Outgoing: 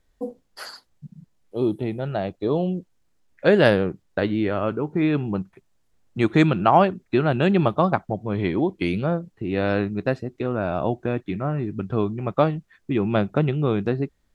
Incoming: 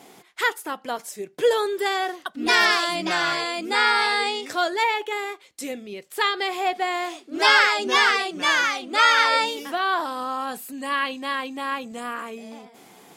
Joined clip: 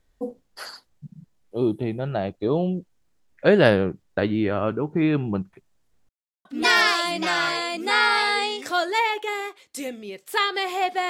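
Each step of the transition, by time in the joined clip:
outgoing
6.09–6.45 s: mute
6.45 s: go over to incoming from 2.29 s

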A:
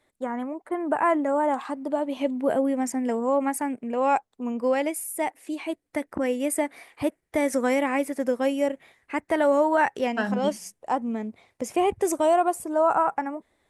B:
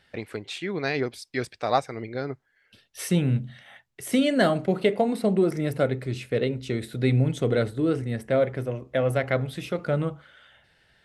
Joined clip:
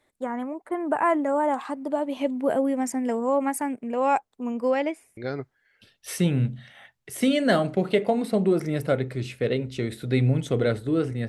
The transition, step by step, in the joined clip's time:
A
4.70–5.17 s: low-pass 6.6 kHz -> 1.8 kHz
5.17 s: go over to B from 2.08 s

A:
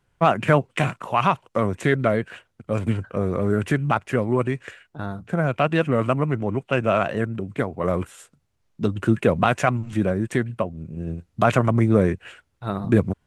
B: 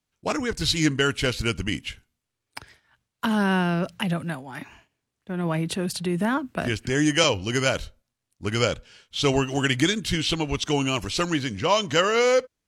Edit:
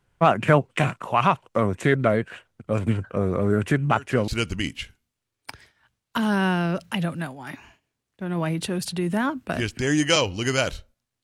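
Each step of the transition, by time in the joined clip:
A
3.83 s: add B from 0.91 s 0.45 s -17.5 dB
4.28 s: go over to B from 1.36 s

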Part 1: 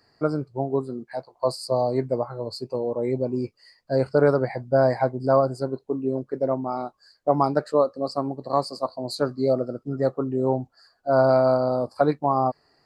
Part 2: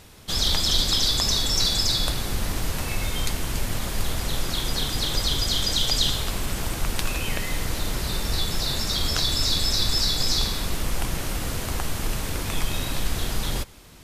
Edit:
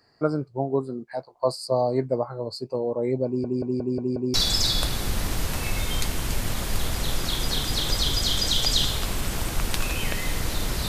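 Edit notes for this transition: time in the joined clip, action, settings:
part 1
3.26 s: stutter in place 0.18 s, 6 plays
4.34 s: go over to part 2 from 1.59 s

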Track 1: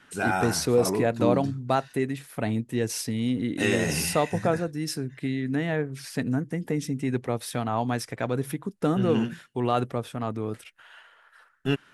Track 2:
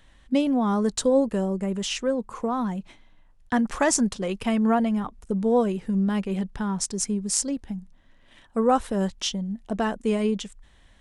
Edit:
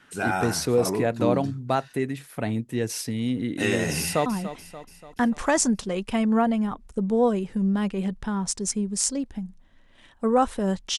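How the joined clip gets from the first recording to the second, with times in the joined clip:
track 1
4.00–4.26 s: echo throw 290 ms, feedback 55%, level -12.5 dB
4.26 s: go over to track 2 from 2.59 s

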